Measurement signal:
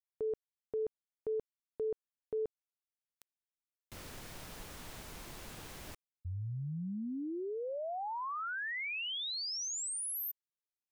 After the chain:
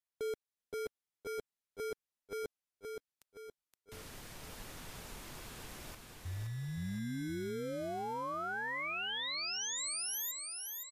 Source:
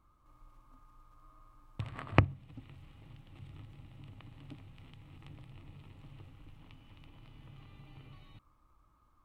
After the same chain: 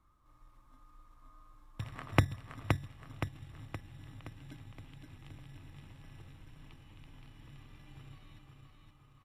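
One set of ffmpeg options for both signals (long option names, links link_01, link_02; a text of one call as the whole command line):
ffmpeg -i in.wav -filter_complex "[0:a]acrossover=split=430[link_01][link_02];[link_01]acrusher=samples=24:mix=1:aa=0.000001[link_03];[link_03][link_02]amix=inputs=2:normalize=0,aecho=1:1:520|1040|1560|2080|2600|3120:0.596|0.292|0.143|0.0701|0.0343|0.0168,volume=-1dB" -ar 32000 -c:a libmp3lame -b:a 64k out.mp3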